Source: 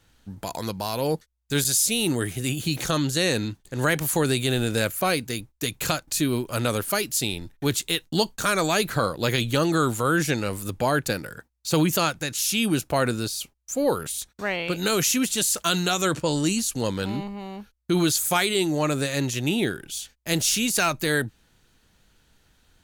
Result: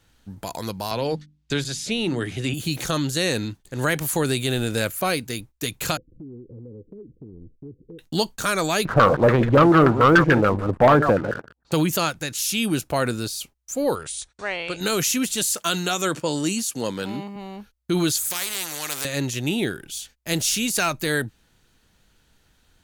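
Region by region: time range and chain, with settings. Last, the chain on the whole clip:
0:00.91–0:02.54: low-pass filter 4,200 Hz + mains-hum notches 50/100/150/200/250/300 Hz + multiband upward and downward compressor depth 70%
0:05.97–0:07.99: Chebyshev low-pass filter 510 Hz, order 8 + downward compressor 5 to 1, threshold −38 dBFS
0:08.85–0:11.72: delay that plays each chunk backwards 107 ms, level −10.5 dB + auto-filter low-pass saw down 6.9 Hz 570–1,700 Hz + leveller curve on the samples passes 2
0:13.95–0:14.81: Butterworth low-pass 10,000 Hz 96 dB per octave + parametric band 210 Hz −9.5 dB 1.2 octaves
0:15.54–0:17.36: high-pass filter 160 Hz + notch filter 4,000 Hz, Q 21
0:18.30–0:19.05: high-pass filter 950 Hz 6 dB per octave + de-essing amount 25% + every bin compressed towards the loudest bin 4 to 1
whole clip: no processing

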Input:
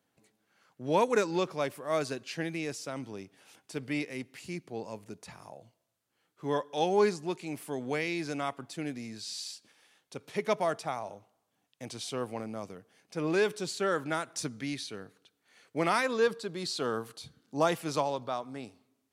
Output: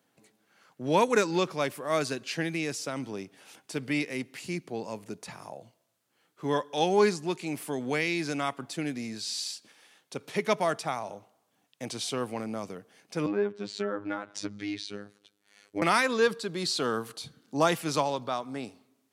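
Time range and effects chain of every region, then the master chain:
0:13.26–0:15.82: treble cut that deepens with the level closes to 1,100 Hz, closed at −26 dBFS + phases set to zero 102 Hz + parametric band 1,100 Hz −3.5 dB 2.5 octaves
whole clip: high-pass filter 120 Hz; dynamic equaliser 570 Hz, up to −4 dB, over −39 dBFS, Q 0.72; level +5.5 dB

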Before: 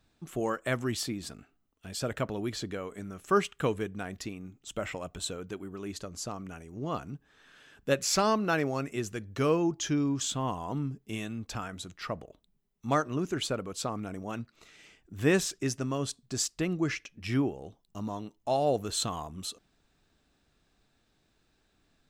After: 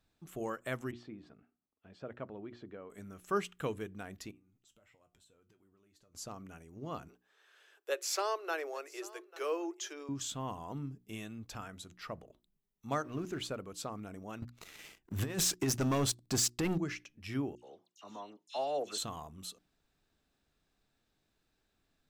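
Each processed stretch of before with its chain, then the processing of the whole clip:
0:00.91–0:02.90: high-pass filter 230 Hz 6 dB per octave + head-to-tape spacing loss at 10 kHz 41 dB
0:04.31–0:06.15: downward compressor 12 to 1, threshold −50 dBFS + tuned comb filter 120 Hz, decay 0.18 s, mix 70%
0:07.08–0:10.09: Butterworth high-pass 340 Hz 72 dB per octave + single-tap delay 843 ms −20 dB
0:13.04–0:13.47: mu-law and A-law mismatch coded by mu + high-shelf EQ 7,300 Hz −8.5 dB
0:14.42–0:16.78: compressor whose output falls as the input rises −30 dBFS, ratio −0.5 + leveller curve on the samples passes 3
0:17.55–0:18.98: band-pass filter 360–4,900 Hz + high-shelf EQ 2,300 Hz +8.5 dB + all-pass dispersion lows, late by 82 ms, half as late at 2,100 Hz
whole clip: parametric band 13,000 Hz +7.5 dB 0.36 octaves; mains-hum notches 60/120/180/240/300/360 Hz; level −7.5 dB

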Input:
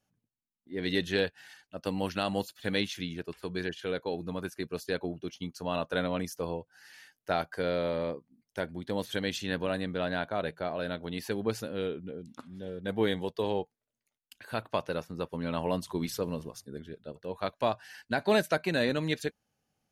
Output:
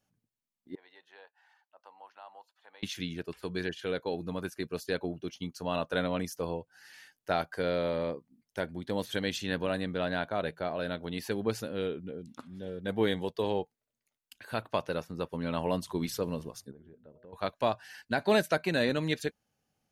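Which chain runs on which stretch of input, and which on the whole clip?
0:00.75–0:02.83: downward compressor 1.5 to 1, threshold −52 dBFS + four-pole ladder high-pass 790 Hz, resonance 60% + spectral tilt −4.5 dB per octave
0:16.71–0:17.33: low-pass filter 1,200 Hz + hum removal 122.4 Hz, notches 5 + downward compressor 3 to 1, threshold −53 dBFS
whole clip: no processing

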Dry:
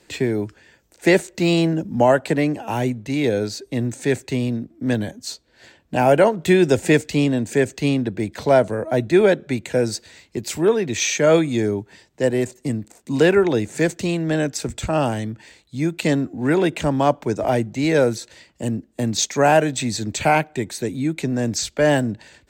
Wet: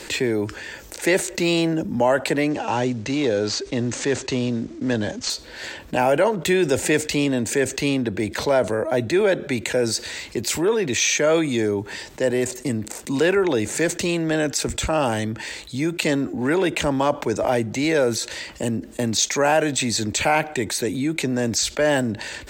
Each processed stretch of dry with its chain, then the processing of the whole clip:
0:02.50–0:05.30: variable-slope delta modulation 64 kbit/s + Butterworth low-pass 7,300 Hz + dynamic equaliser 2,200 Hz, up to −6 dB, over −46 dBFS, Q 4.2
whole clip: parametric band 140 Hz −8 dB 2.1 octaves; notch filter 700 Hz, Q 12; envelope flattener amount 50%; level −3 dB

